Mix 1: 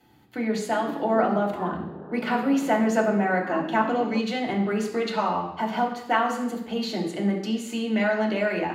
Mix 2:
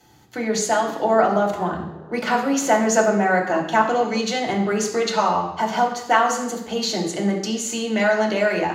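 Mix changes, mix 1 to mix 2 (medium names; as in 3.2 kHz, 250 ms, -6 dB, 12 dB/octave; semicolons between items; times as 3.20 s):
speech +6.0 dB; master: add fifteen-band graphic EQ 250 Hz -7 dB, 2.5 kHz -3 dB, 6.3 kHz +12 dB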